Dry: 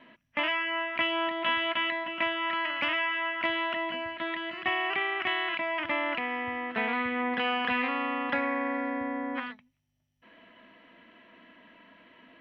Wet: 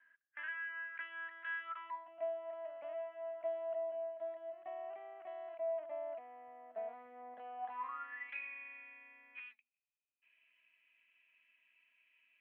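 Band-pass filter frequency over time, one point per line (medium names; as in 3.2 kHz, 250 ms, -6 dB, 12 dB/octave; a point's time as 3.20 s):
band-pass filter, Q 19
1.59 s 1.6 kHz
2.22 s 650 Hz
7.56 s 650 Hz
8.36 s 2.5 kHz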